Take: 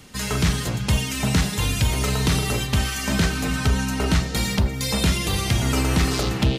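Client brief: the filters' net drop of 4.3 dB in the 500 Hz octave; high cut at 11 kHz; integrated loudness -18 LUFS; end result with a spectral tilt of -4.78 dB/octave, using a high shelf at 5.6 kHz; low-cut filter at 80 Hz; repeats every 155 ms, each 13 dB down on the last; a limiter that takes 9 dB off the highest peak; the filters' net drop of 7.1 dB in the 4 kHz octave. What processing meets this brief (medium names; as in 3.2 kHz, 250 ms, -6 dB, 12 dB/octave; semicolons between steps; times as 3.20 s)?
high-pass 80 Hz; low-pass 11 kHz; peaking EQ 500 Hz -5.5 dB; peaking EQ 4 kHz -8 dB; treble shelf 5.6 kHz -3.5 dB; peak limiter -19 dBFS; feedback delay 155 ms, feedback 22%, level -13 dB; trim +10 dB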